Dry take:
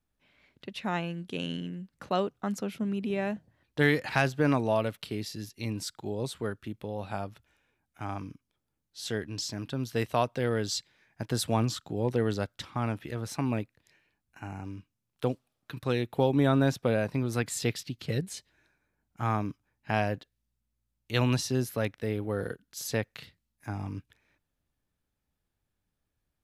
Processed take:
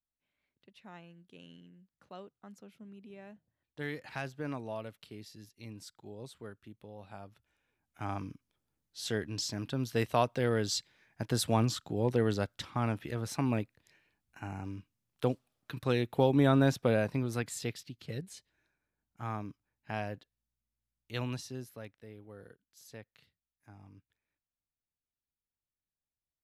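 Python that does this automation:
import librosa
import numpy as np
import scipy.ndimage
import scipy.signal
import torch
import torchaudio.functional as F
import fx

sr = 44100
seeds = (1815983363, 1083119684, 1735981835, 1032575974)

y = fx.gain(x, sr, db=fx.line((3.27, -19.5), (4.07, -13.0), (7.2, -13.0), (8.06, -1.0), (16.99, -1.0), (17.84, -9.0), (21.12, -9.0), (22.08, -19.0)))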